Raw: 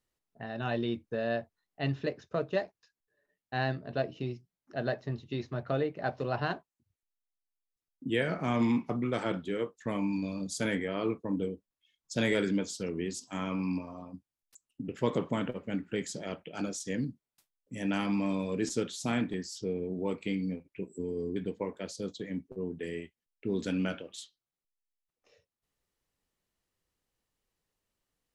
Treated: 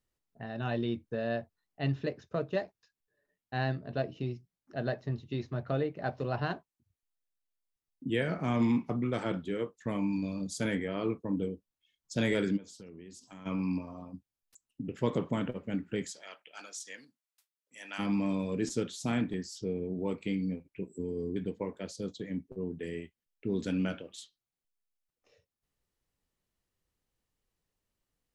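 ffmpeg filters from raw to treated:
ffmpeg -i in.wav -filter_complex "[0:a]asplit=3[link_01][link_02][link_03];[link_01]afade=type=out:start_time=12.56:duration=0.02[link_04];[link_02]acompressor=threshold=-47dB:ratio=4:attack=3.2:release=140:knee=1:detection=peak,afade=type=in:start_time=12.56:duration=0.02,afade=type=out:start_time=13.45:duration=0.02[link_05];[link_03]afade=type=in:start_time=13.45:duration=0.02[link_06];[link_04][link_05][link_06]amix=inputs=3:normalize=0,asplit=3[link_07][link_08][link_09];[link_07]afade=type=out:start_time=16.09:duration=0.02[link_10];[link_08]highpass=1100,afade=type=in:start_time=16.09:duration=0.02,afade=type=out:start_time=17.98:duration=0.02[link_11];[link_09]afade=type=in:start_time=17.98:duration=0.02[link_12];[link_10][link_11][link_12]amix=inputs=3:normalize=0,lowshelf=frequency=230:gain=5.5,volume=-2.5dB" out.wav

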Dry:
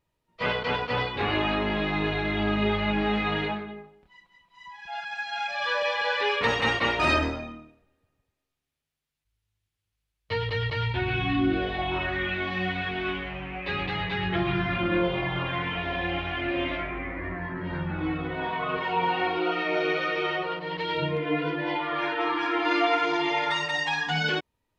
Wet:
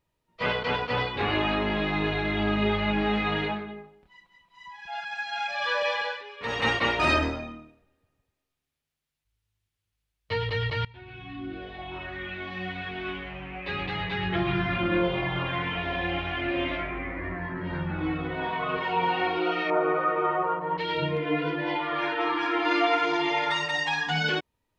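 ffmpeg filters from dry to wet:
ffmpeg -i in.wav -filter_complex "[0:a]asettb=1/sr,asplit=3[link_01][link_02][link_03];[link_01]atrim=end=19.704[link_04];[link_02]atrim=start=19.7:end=20.78,asetpts=PTS-STARTPTS,afade=type=in:duration=0.004:curve=qsin,afade=type=out:start_time=1.076:duration=0.004:curve=qsin,lowpass=frequency=1100:width_type=q:width=3.2[link_05];[link_03]atrim=start=20.776[link_06];[link_04][link_05]acrossfade=duration=0.004:curve1=hsin:curve2=qsin[link_07];[link_07][link_06]acrossfade=duration=0.004:curve1=qsin:curve2=hsin,asplit=4[link_08][link_09][link_10][link_11];[link_08]atrim=end=6.23,asetpts=PTS-STARTPTS,afade=type=out:start_time=5.95:duration=0.28:silence=0.125893[link_12];[link_09]atrim=start=6.23:end=6.38,asetpts=PTS-STARTPTS,volume=-18dB[link_13];[link_10]atrim=start=6.38:end=10.85,asetpts=PTS-STARTPTS,afade=type=in:duration=0.28:silence=0.125893,afade=type=out:start_time=4.466:duration=0.004:curve=hsin:silence=0.0794328[link_14];[link_11]atrim=start=10.85,asetpts=PTS-STARTPTS,afade=type=in:duration=3.7:silence=0.0794328[link_15];[link_12][link_13][link_14][link_15]concat=n=4:v=0:a=1" out.wav

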